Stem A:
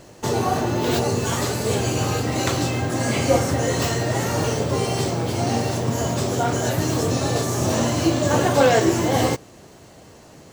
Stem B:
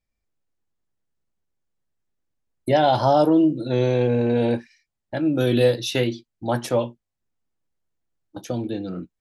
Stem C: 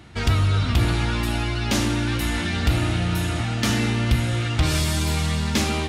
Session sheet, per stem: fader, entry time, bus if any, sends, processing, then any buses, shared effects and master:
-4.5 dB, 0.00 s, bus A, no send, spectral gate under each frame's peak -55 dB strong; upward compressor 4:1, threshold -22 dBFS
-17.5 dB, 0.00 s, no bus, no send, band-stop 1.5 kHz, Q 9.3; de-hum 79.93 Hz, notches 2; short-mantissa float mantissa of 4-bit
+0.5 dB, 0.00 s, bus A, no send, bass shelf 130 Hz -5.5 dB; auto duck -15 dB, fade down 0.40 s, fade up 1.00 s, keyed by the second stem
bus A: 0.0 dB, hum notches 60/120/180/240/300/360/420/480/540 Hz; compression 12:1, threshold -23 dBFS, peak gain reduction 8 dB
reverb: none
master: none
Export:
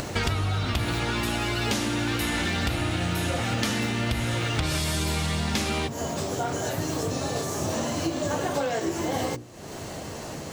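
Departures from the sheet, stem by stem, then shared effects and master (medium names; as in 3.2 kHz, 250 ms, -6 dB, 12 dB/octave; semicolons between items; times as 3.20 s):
stem B: muted; stem C +0.5 dB -> +9.0 dB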